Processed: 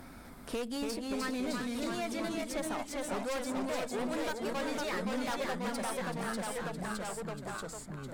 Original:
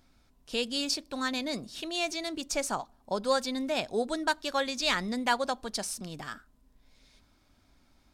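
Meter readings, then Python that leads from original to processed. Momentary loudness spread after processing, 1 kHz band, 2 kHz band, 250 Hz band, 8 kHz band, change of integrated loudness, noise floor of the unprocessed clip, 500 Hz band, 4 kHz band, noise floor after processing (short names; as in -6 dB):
6 LU, -4.5 dB, -5.0 dB, 0.0 dB, -5.0 dB, -5.0 dB, -65 dBFS, -2.5 dB, -10.0 dB, -49 dBFS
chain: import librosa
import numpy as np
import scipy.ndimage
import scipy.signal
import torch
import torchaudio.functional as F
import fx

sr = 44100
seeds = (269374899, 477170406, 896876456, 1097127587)

p1 = fx.band_shelf(x, sr, hz=4300.0, db=-9.5, octaves=1.7)
p2 = fx.cheby_harmonics(p1, sr, harmonics=(6,), levels_db=(-17,), full_scale_db=-15.0)
p3 = p2 + fx.echo_single(p2, sr, ms=378, db=-13.5, dry=0)
p4 = np.clip(p3, -10.0 ** (-31.0 / 20.0), 10.0 ** (-31.0 / 20.0))
p5 = fx.echo_pitch(p4, sr, ms=251, semitones=-1, count=3, db_per_echo=-3.0)
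p6 = fx.band_squash(p5, sr, depth_pct=70)
y = p6 * 10.0 ** (-2.5 / 20.0)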